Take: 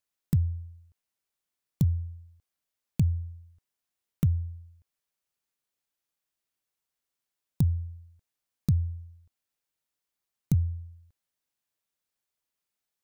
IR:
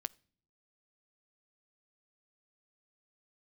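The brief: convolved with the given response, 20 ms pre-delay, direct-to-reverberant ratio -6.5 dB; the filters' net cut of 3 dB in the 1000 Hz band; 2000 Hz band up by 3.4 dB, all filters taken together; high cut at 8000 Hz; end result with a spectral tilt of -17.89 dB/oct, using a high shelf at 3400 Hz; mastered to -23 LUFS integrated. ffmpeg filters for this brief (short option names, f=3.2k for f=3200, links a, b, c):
-filter_complex "[0:a]lowpass=8k,equalizer=f=1k:t=o:g=-5.5,equalizer=f=2k:t=o:g=3.5,highshelf=f=3.4k:g=6,asplit=2[a][b];[1:a]atrim=start_sample=2205,adelay=20[c];[b][c]afir=irnorm=-1:irlink=0,volume=8.5dB[d];[a][d]amix=inputs=2:normalize=0,volume=-0.5dB"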